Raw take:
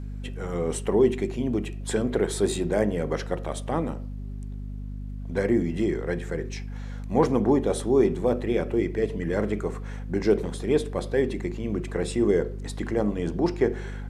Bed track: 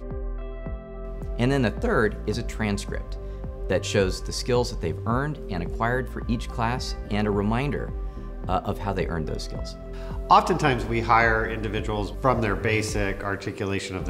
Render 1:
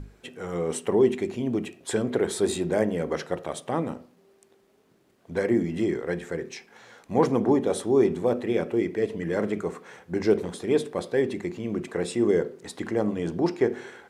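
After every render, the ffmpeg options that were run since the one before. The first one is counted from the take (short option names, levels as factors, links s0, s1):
-af "bandreject=f=50:t=h:w=6,bandreject=f=100:t=h:w=6,bandreject=f=150:t=h:w=6,bandreject=f=200:t=h:w=6,bandreject=f=250:t=h:w=6"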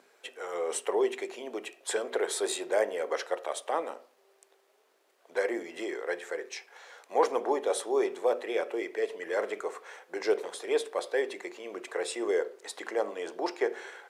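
-af "highpass=f=470:w=0.5412,highpass=f=470:w=1.3066"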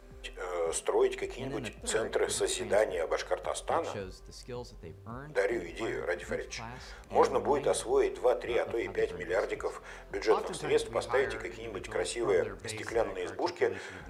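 -filter_complex "[1:a]volume=0.119[s0];[0:a][s0]amix=inputs=2:normalize=0"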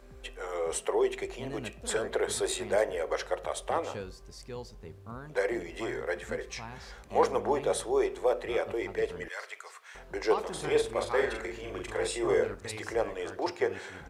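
-filter_complex "[0:a]asettb=1/sr,asplit=3[s0][s1][s2];[s0]atrim=end=9.284[s3];[s1]atrim=start=9.28:end=9.95,asetpts=PTS-STARTPTS,afade=t=in:d=0.004:c=qsin,afade=t=out:st=0.666:d=0.004:c=qsin,highpass=1500[s4];[s2]atrim=start=9.946[s5];[s3][s4]acrossfade=d=0.004:c1=hsin:c2=qsin[s6];[s6][s5]acrossfade=d=0.004:c1=qsin:c2=hsin,asplit=3[s7][s8][s9];[s7]afade=t=out:st=10.54:d=0.02[s10];[s8]asplit=2[s11][s12];[s12]adelay=40,volume=0.596[s13];[s11][s13]amix=inputs=2:normalize=0,afade=t=in:st=10.54:d=0.02,afade=t=out:st=12.54:d=0.02[s14];[s9]afade=t=in:st=12.54:d=0.02[s15];[s10][s14][s15]amix=inputs=3:normalize=0"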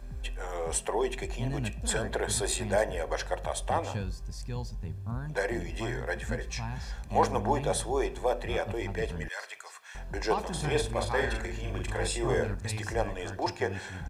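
-af "bass=f=250:g=10,treble=f=4000:g=3,aecho=1:1:1.2:0.44"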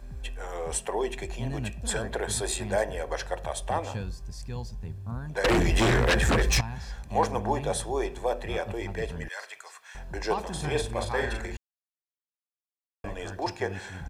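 -filter_complex "[0:a]asettb=1/sr,asplit=3[s0][s1][s2];[s0]atrim=end=5.444[s3];[s1]atrim=start=5.44:end=6.61,asetpts=PTS-STARTPTS,afade=t=in:d=0.004:c=qsin,afade=t=out:st=1.166:d=0.004:c=qsin,aeval=exprs='0.126*sin(PI/2*3.98*val(0)/0.126)':c=same[s4];[s2]atrim=start=6.606[s5];[s3][s4]acrossfade=d=0.004:c1=hsin:c2=qsin[s6];[s6][s5]acrossfade=d=0.004:c1=qsin:c2=hsin,asplit=3[s7][s8][s9];[s7]atrim=end=11.57,asetpts=PTS-STARTPTS,afade=t=out:st=11.566:d=0.004:c=hsin[s10];[s8]atrim=start=11.57:end=13.04,asetpts=PTS-STARTPTS,volume=0[s11];[s9]atrim=start=13.04,asetpts=PTS-STARTPTS,afade=t=in:d=0.004:c=hsin[s12];[s10][s11][s12]concat=n=3:v=0:a=1"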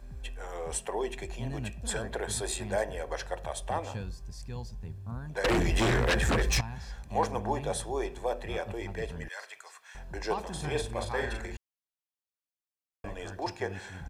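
-af "volume=0.668"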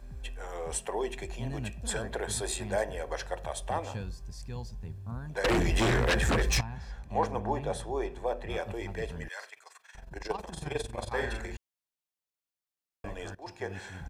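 -filter_complex "[0:a]asettb=1/sr,asplit=3[s0][s1][s2];[s0]atrim=end=6.634[s3];[s1]atrim=start=6.63:end=8.5,asetpts=PTS-STARTPTS,afade=t=in:d=0.004:c=qsin,afade=t=out:st=1.866:d=0.004:c=qsin,highshelf=f=3700:g=-9[s4];[s2]atrim=start=8.496[s5];[s3][s4]acrossfade=d=0.004:c1=hsin:c2=qsin[s6];[s6][s5]acrossfade=d=0.004:c1=qsin:c2=hsin,asettb=1/sr,asplit=3[s7][s8][s9];[s7]atrim=end=9.494[s10];[s8]atrim=start=9.49:end=11.13,asetpts=PTS-STARTPTS,afade=t=in:d=0.004:c=qsin,afade=t=out:st=1.636:d=0.004:c=qsin,tremolo=f=22:d=0.788[s11];[s9]atrim=start=11.126[s12];[s10][s11]acrossfade=d=0.004:c1=hsin:c2=qsin[s13];[s13][s12]acrossfade=d=0.004:c1=qsin:c2=hsin,asplit=2[s14][s15];[s14]atrim=end=13.35,asetpts=PTS-STARTPTS,afade=t=out:st=13.346:d=0.004:c=hsin:silence=0.11885[s16];[s15]atrim=start=13.35,asetpts=PTS-STARTPTS,afade=t=in:d=0.44:silence=0.11885[s17];[s16][s17]concat=n=2:v=0:a=1"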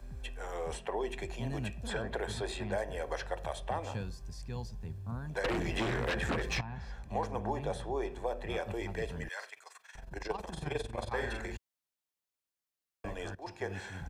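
-filter_complex "[0:a]acrossover=split=110|4200[s0][s1][s2];[s0]acompressor=threshold=0.00891:ratio=4[s3];[s1]acompressor=threshold=0.0282:ratio=4[s4];[s2]acompressor=threshold=0.00178:ratio=4[s5];[s3][s4][s5]amix=inputs=3:normalize=0"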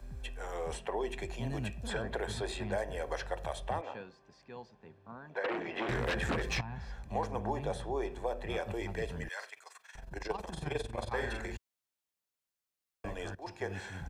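-filter_complex "[0:a]asettb=1/sr,asplit=3[s0][s1][s2];[s0]atrim=end=3.814[s3];[s1]atrim=start=3.81:end=5.89,asetpts=PTS-STARTPTS,afade=t=in:d=0.004:c=qsin,afade=t=out:st=2.076:d=0.004:c=qsin,highpass=340,lowpass=2600[s4];[s2]atrim=start=5.886[s5];[s3][s4]acrossfade=d=0.004:c1=hsin:c2=qsin[s6];[s6][s5]acrossfade=d=0.004:c1=qsin:c2=hsin"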